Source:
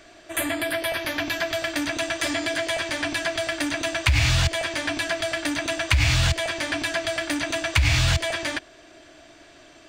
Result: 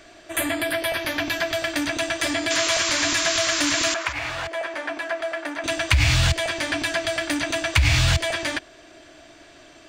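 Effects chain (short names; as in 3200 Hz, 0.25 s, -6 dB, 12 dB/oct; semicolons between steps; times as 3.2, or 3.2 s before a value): 2.5–4.13 painted sound noise 950–7600 Hz -26 dBFS; 3.94–5.64 three-band isolator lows -23 dB, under 340 Hz, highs -15 dB, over 2000 Hz; gain +1.5 dB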